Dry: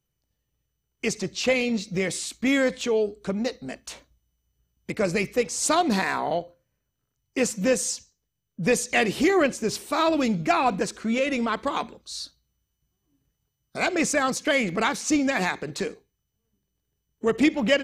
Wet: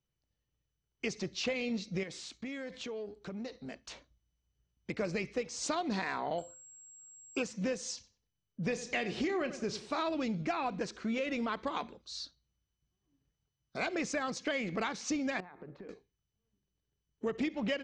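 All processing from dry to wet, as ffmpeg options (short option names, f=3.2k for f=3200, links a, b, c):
-filter_complex "[0:a]asettb=1/sr,asplit=3[a][b][c];[a]atrim=end=2.034[d];[b]atrim=start=2.03:end=3.88,asetpts=PTS-STARTPTS,afade=t=in:d=0.004:c=qsin,afade=t=out:st=1.846:d=0.004:c=qsin,aeval=exprs='if(lt(val(0),0),0.708*val(0),val(0))':c=same,highpass=44,acompressor=threshold=-31dB:ratio=6:attack=3.2:release=140:knee=1:detection=peak[e];[c]atrim=start=3.876[f];[d][e]acrossfade=d=0.004:c1=hsin:c2=qsin[g];[g][f]acrossfade=d=0.004:c1=qsin:c2=hsin,asettb=1/sr,asplit=3[h][i][j];[h]atrim=end=6.384[k];[i]atrim=start=6.38:end=7.43,asetpts=PTS-STARTPTS,afade=t=in:d=0.004:c=qsin,afade=t=out:st=1.046:d=0.004:c=qsin,equalizer=f=1.7k:t=o:w=1.2:g=12.5,aeval=exprs='val(0)+0.0158*sin(2*PI*7600*n/s)':c=same,asuperstop=centerf=1900:order=8:qfactor=2.6[l];[j]atrim=start=7.426[m];[k][l]acrossfade=d=0.004:c1=hsin:c2=qsin[n];[n][m]acrossfade=d=0.004:c1=qsin:c2=hsin,asettb=1/sr,asplit=3[o][p][q];[o]atrim=end=7.944[r];[p]atrim=start=7.94:end=10.02,asetpts=PTS-STARTPTS,afade=t=in:d=0.004:c=qsin,afade=t=out:st=2.076:d=0.004:c=qsin,lowpass=12k,asplit=2[s][t];[t]adelay=33,volume=-12.5dB[u];[s][u]amix=inputs=2:normalize=0,atrim=end_sample=91728,asplit=2[v][w];[w]adelay=95,lowpass=f=2.7k:p=1,volume=-15dB,asplit=2[x][y];[y]adelay=95,lowpass=f=2.7k:p=1,volume=0.34,asplit=2[z][aa];[aa]adelay=95,lowpass=f=2.7k:p=1,volume=0.34[ab];[v][x][z][ab]amix=inputs=4:normalize=0,atrim=end_sample=91728[ac];[q]atrim=start=10.016[ad];[r][ac]acrossfade=d=0.004:c1=hsin:c2=qsin[ae];[ae][ad]acrossfade=d=0.004:c1=qsin:c2=hsin,asettb=1/sr,asplit=3[af][ag][ah];[af]atrim=end=15.404[ai];[ag]atrim=start=15.4:end=15.89,asetpts=PTS-STARTPTS,afade=t=in:d=0.004:c=qsin,afade=t=out:st=0.486:d=0.004:c=qsin,bandreject=f=114.4:t=h:w=4,bandreject=f=228.8:t=h:w=4,bandreject=f=343.2:t=h:w=4,bandreject=f=457.6:t=h:w=4,bandreject=f=572:t=h:w=4,bandreject=f=686.4:t=h:w=4,bandreject=f=800.8:t=h:w=4,bandreject=f=915.2:t=h:w=4,bandreject=f=1.0296k:t=h:w=4,bandreject=f=1.144k:t=h:w=4,bandreject=f=1.2584k:t=h:w=4,bandreject=f=1.3728k:t=h:w=4,acompressor=threshold=-37dB:ratio=8:attack=3.2:release=140:knee=1:detection=peak,lowpass=1.3k[aj];[ah]atrim=start=15.886[ak];[ai][aj]acrossfade=d=0.004:c1=hsin:c2=qsin[al];[al][ak]acrossfade=d=0.004:c1=qsin:c2=hsin,lowpass=f=6.1k:w=0.5412,lowpass=f=6.1k:w=1.3066,acompressor=threshold=-24dB:ratio=6,volume=-6.5dB"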